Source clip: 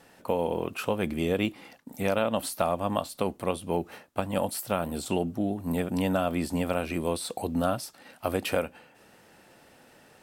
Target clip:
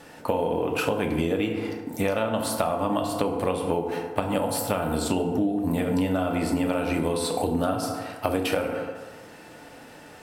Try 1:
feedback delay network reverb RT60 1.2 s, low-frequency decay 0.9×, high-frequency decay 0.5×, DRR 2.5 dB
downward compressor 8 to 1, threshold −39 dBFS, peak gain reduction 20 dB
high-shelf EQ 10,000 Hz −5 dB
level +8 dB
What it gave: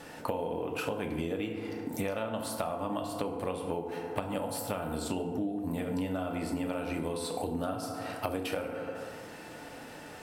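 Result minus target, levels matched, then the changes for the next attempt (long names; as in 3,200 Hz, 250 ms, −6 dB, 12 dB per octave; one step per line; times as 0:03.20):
downward compressor: peak gain reduction +9 dB
change: downward compressor 8 to 1, threshold −29 dBFS, peak gain reduction 11.5 dB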